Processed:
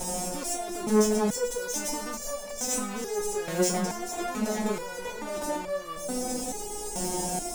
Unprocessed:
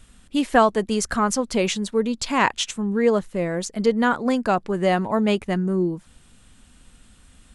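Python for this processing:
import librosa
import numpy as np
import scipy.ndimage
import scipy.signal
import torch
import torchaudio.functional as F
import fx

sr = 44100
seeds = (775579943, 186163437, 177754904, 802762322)

p1 = fx.bin_compress(x, sr, power=0.6)
p2 = fx.low_shelf(p1, sr, hz=360.0, db=-6.0)
p3 = fx.over_compress(p2, sr, threshold_db=-27.0, ratio=-1.0)
p4 = fx.brickwall_bandstop(p3, sr, low_hz=960.0, high_hz=5000.0)
p5 = fx.hum_notches(p4, sr, base_hz=60, count=4)
p6 = fx.echo_alternate(p5, sr, ms=136, hz=1600.0, feedback_pct=75, wet_db=-13.5)
p7 = fx.leveller(p6, sr, passes=1)
p8 = p7 + fx.echo_feedback(p7, sr, ms=434, feedback_pct=51, wet_db=-13.5, dry=0)
p9 = fx.fuzz(p8, sr, gain_db=32.0, gate_db=-41.0)
y = fx.resonator_held(p9, sr, hz=2.3, low_hz=180.0, high_hz=580.0)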